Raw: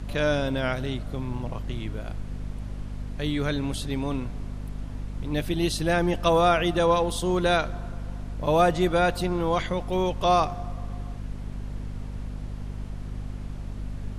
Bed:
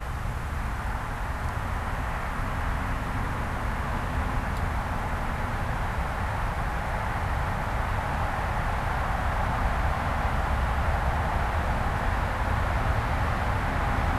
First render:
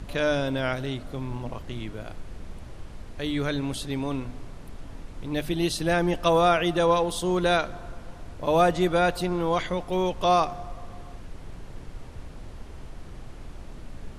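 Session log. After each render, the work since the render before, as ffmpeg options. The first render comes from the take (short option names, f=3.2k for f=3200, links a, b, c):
-af "bandreject=f=50:t=h:w=6,bandreject=f=100:t=h:w=6,bandreject=f=150:t=h:w=6,bandreject=f=200:t=h:w=6,bandreject=f=250:t=h:w=6"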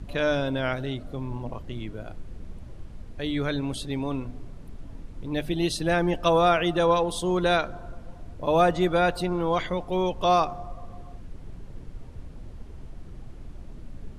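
-af "afftdn=nr=8:nf=-42"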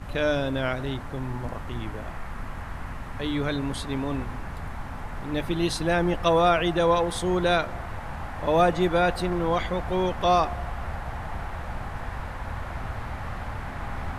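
-filter_complex "[1:a]volume=-8dB[a];[0:a][a]amix=inputs=2:normalize=0"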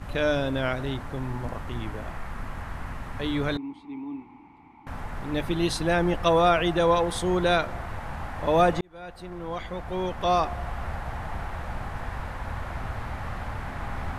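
-filter_complex "[0:a]asettb=1/sr,asplit=3[a][b][c];[a]atrim=end=3.574[d];[b]atrim=start=3.57:end=4.87,asetpts=PTS-STARTPTS,afade=t=in:d=0.004:c=qsin,afade=t=out:st=1.296:d=0.004:c=qsin,asplit=3[e][f][g];[e]bandpass=f=300:t=q:w=8,volume=0dB[h];[f]bandpass=f=870:t=q:w=8,volume=-6dB[i];[g]bandpass=f=2.24k:t=q:w=8,volume=-9dB[j];[h][i][j]amix=inputs=3:normalize=0[k];[c]atrim=start=4.866[l];[d][k]acrossfade=d=0.004:c1=hsin:c2=qsin[m];[m][l]acrossfade=d=0.004:c1=qsin:c2=hsin,asplit=2[n][o];[n]atrim=end=8.81,asetpts=PTS-STARTPTS,afade=t=out:st=8.806:d=0.004:c=hsin[p];[o]atrim=start=8.81,asetpts=PTS-STARTPTS,afade=t=in:d=1.95[q];[p][q]concat=n=2:v=0:a=1"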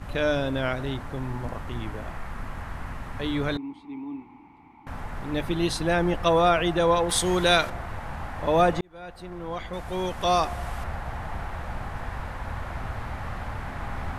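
-filter_complex "[0:a]asettb=1/sr,asplit=3[a][b][c];[a]atrim=end=7.094[d];[b]atrim=start=7.09:end=7.7,asetpts=PTS-STARTPTS,afade=t=in:d=0.004:c=qsin,afade=t=out:st=0.606:d=0.004:c=qsin,highshelf=f=2.4k:g=11.5[e];[c]atrim=start=7.696[f];[d][e]acrossfade=d=0.004:c1=hsin:c2=qsin[g];[g][f]acrossfade=d=0.004:c1=qsin:c2=hsin,asettb=1/sr,asplit=3[h][i][j];[h]atrim=end=9.734[k];[i]atrim=start=9.73:end=10.84,asetpts=PTS-STARTPTS,afade=t=in:d=0.004:c=qsin,afade=t=out:st=1.106:d=0.004:c=qsin,equalizer=f=10k:w=0.4:g=10.5[l];[j]atrim=start=10.836[m];[k][l]acrossfade=d=0.004:c1=hsin:c2=qsin[n];[n][m]acrossfade=d=0.004:c1=qsin:c2=hsin"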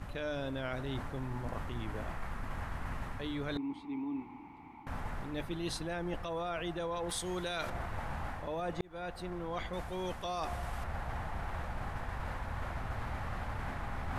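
-af "alimiter=limit=-16dB:level=0:latency=1:release=100,areverse,acompressor=threshold=-34dB:ratio=10,areverse"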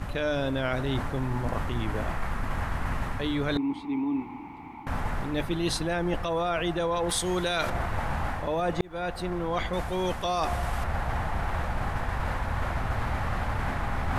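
-af "volume=9.5dB"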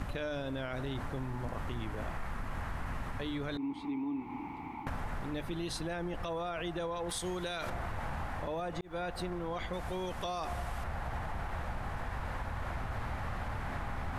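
-af "alimiter=limit=-20.5dB:level=0:latency=1:release=73,acompressor=threshold=-34dB:ratio=6"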